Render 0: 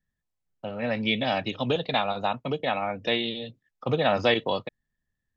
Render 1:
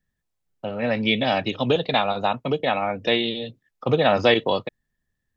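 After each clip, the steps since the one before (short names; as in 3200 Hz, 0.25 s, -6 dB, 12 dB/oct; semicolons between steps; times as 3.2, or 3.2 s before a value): bell 390 Hz +2.5 dB; gain +4 dB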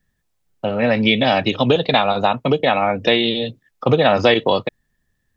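compressor 2:1, threshold -22 dBFS, peak gain reduction 6 dB; gain +8.5 dB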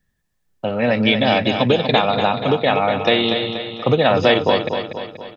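feedback echo 0.24 s, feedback 52%, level -7.5 dB; gain -1 dB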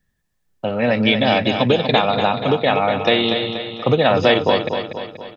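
nothing audible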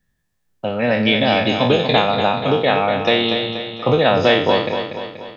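spectral trails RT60 0.48 s; gain -1 dB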